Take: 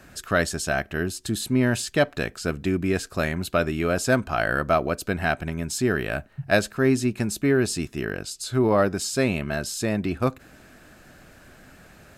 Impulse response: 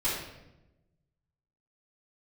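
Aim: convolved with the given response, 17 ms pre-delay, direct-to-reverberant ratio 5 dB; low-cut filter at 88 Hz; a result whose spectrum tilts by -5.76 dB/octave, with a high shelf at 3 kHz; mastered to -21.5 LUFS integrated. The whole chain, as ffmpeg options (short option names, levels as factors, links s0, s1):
-filter_complex "[0:a]highpass=88,highshelf=f=3000:g=-8,asplit=2[s0][s1];[1:a]atrim=start_sample=2205,adelay=17[s2];[s1][s2]afir=irnorm=-1:irlink=0,volume=0.2[s3];[s0][s3]amix=inputs=2:normalize=0,volume=1.41"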